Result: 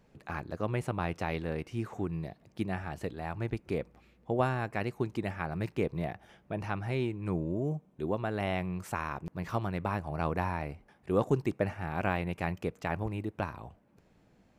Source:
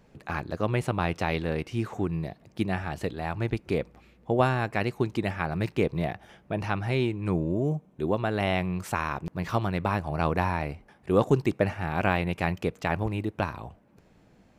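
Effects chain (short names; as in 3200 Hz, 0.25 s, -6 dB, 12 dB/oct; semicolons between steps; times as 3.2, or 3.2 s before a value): dynamic EQ 3700 Hz, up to -4 dB, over -50 dBFS, Q 1.2; gain -5.5 dB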